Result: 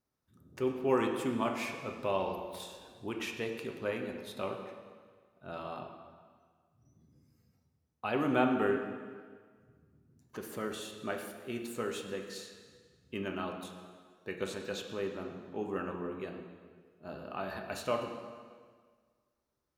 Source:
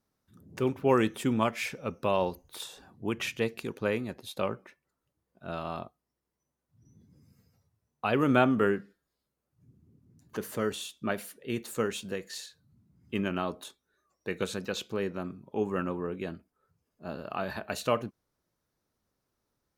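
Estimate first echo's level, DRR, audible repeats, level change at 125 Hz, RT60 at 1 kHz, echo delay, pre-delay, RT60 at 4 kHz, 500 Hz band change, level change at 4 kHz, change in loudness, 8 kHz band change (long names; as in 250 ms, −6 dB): no echo audible, 2.5 dB, no echo audible, −8.5 dB, 1.7 s, no echo audible, 3 ms, 1.5 s, −4.0 dB, −5.0 dB, −4.5 dB, −6.0 dB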